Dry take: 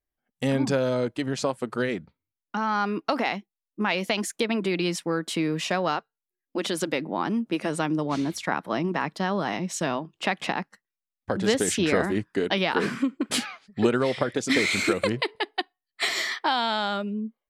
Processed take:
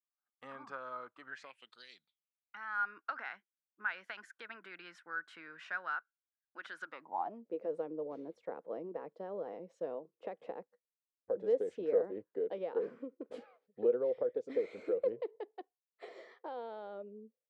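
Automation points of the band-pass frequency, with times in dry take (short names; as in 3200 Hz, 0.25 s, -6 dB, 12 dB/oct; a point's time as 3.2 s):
band-pass, Q 9.3
1.21 s 1200 Hz
1.85 s 4800 Hz
2.8 s 1500 Hz
6.81 s 1500 Hz
7.49 s 490 Hz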